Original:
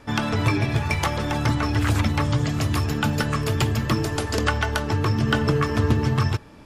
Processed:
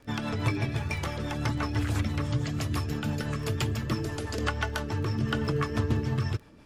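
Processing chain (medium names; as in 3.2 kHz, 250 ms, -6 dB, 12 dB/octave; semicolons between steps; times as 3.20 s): rotary cabinet horn 6 Hz; crackle 11 per s -34 dBFS; trim -5.5 dB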